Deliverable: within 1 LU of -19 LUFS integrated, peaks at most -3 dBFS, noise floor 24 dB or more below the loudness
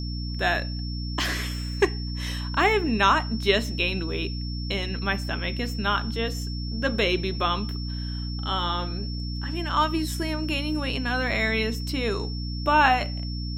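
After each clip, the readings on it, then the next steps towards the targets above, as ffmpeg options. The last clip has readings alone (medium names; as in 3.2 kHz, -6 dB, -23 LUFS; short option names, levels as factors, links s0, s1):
hum 60 Hz; highest harmonic 300 Hz; hum level -28 dBFS; steady tone 5.4 kHz; tone level -38 dBFS; loudness -26.0 LUFS; peak level -6.0 dBFS; loudness target -19.0 LUFS
-> -af "bandreject=f=60:t=h:w=6,bandreject=f=120:t=h:w=6,bandreject=f=180:t=h:w=6,bandreject=f=240:t=h:w=6,bandreject=f=300:t=h:w=6"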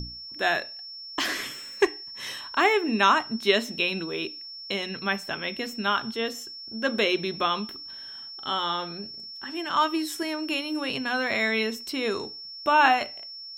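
hum not found; steady tone 5.4 kHz; tone level -38 dBFS
-> -af "bandreject=f=5400:w=30"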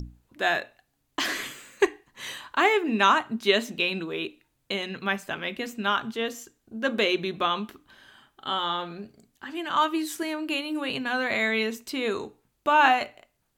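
steady tone not found; loudness -26.5 LUFS; peak level -6.0 dBFS; loudness target -19.0 LUFS
-> -af "volume=2.37,alimiter=limit=0.708:level=0:latency=1"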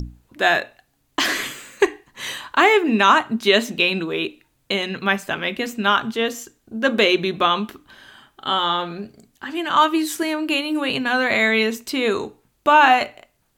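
loudness -19.5 LUFS; peak level -3.0 dBFS; noise floor -66 dBFS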